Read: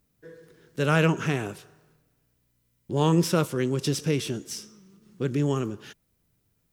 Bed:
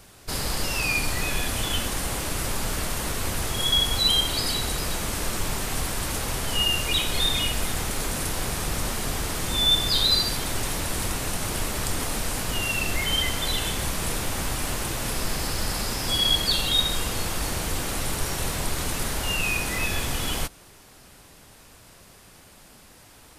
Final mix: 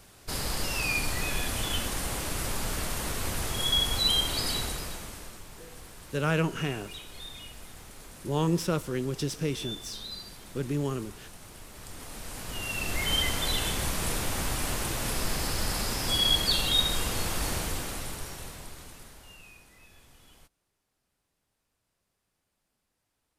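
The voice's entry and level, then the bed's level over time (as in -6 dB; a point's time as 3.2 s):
5.35 s, -5.0 dB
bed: 4.59 s -4 dB
5.45 s -19.5 dB
11.66 s -19.5 dB
13.12 s -2.5 dB
17.55 s -2.5 dB
19.73 s -29.5 dB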